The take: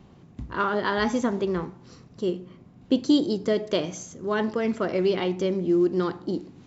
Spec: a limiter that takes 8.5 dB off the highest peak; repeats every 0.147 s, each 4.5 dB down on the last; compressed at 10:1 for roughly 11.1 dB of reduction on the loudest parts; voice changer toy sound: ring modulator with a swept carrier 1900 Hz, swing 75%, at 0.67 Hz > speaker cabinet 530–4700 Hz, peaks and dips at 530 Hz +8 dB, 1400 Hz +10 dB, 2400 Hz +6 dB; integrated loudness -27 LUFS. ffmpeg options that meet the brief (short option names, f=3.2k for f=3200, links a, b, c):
-af "acompressor=threshold=-26dB:ratio=10,alimiter=limit=-24dB:level=0:latency=1,aecho=1:1:147|294|441|588|735|882|1029|1176|1323:0.596|0.357|0.214|0.129|0.0772|0.0463|0.0278|0.0167|0.01,aeval=exprs='val(0)*sin(2*PI*1900*n/s+1900*0.75/0.67*sin(2*PI*0.67*n/s))':c=same,highpass=530,equalizer=f=530:t=q:w=4:g=8,equalizer=f=1.4k:t=q:w=4:g=10,equalizer=f=2.4k:t=q:w=4:g=6,lowpass=f=4.7k:w=0.5412,lowpass=f=4.7k:w=1.3066,volume=2dB"